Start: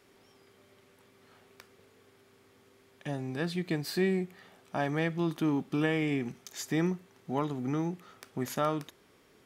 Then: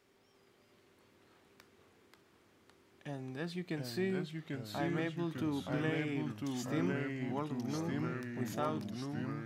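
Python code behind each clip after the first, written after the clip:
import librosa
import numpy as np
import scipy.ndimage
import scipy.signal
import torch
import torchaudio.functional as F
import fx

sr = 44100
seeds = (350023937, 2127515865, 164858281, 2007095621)

y = fx.peak_eq(x, sr, hz=11000.0, db=-4.5, octaves=0.33)
y = fx.echo_pitch(y, sr, ms=340, semitones=-2, count=3, db_per_echo=-3.0)
y = y * librosa.db_to_amplitude(-7.5)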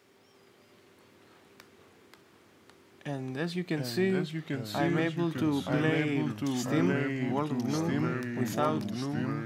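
y = scipy.signal.sosfilt(scipy.signal.butter(2, 81.0, 'highpass', fs=sr, output='sos'), x)
y = y * librosa.db_to_amplitude(7.5)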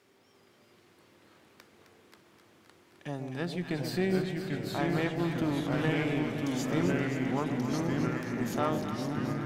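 y = fx.tube_stage(x, sr, drive_db=18.0, bias=0.55)
y = fx.echo_alternate(y, sr, ms=131, hz=800.0, feedback_pct=85, wet_db=-7)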